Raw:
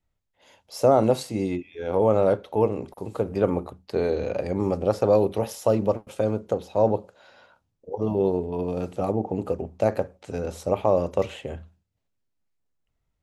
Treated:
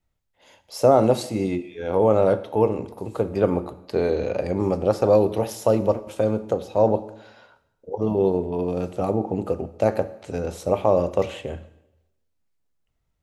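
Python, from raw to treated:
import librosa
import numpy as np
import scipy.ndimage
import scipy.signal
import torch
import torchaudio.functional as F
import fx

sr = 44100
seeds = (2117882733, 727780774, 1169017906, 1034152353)

y = fx.rev_plate(x, sr, seeds[0], rt60_s=0.91, hf_ratio=0.9, predelay_ms=0, drr_db=13.0)
y = y * 10.0 ** (2.0 / 20.0)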